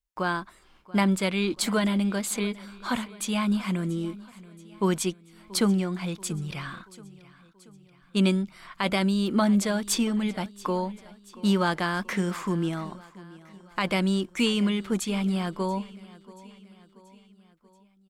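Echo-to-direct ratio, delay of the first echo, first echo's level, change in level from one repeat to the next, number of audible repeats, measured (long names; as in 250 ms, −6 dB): −18.5 dB, 682 ms, −20.0 dB, −5.5 dB, 3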